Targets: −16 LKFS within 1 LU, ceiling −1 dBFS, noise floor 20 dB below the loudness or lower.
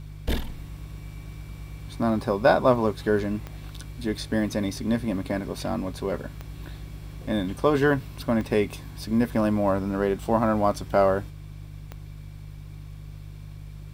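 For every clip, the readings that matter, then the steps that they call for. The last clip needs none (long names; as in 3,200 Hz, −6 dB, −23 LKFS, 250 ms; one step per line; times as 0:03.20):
number of clicks 4; mains hum 50 Hz; hum harmonics up to 150 Hz; level of the hum −38 dBFS; integrated loudness −25.5 LKFS; sample peak −5.5 dBFS; target loudness −16.0 LKFS
→ click removal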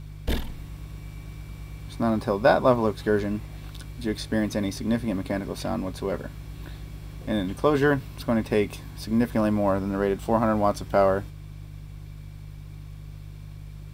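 number of clicks 0; mains hum 50 Hz; hum harmonics up to 150 Hz; level of the hum −38 dBFS
→ hum removal 50 Hz, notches 3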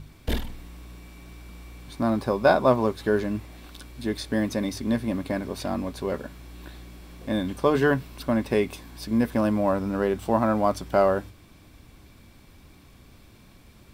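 mains hum none found; integrated loudness −25.5 LKFS; sample peak −5.5 dBFS; target loudness −16.0 LKFS
→ level +9.5 dB
brickwall limiter −1 dBFS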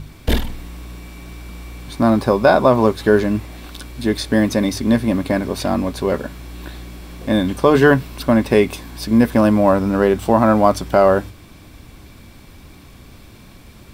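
integrated loudness −16.5 LKFS; sample peak −1.0 dBFS; background noise floor −43 dBFS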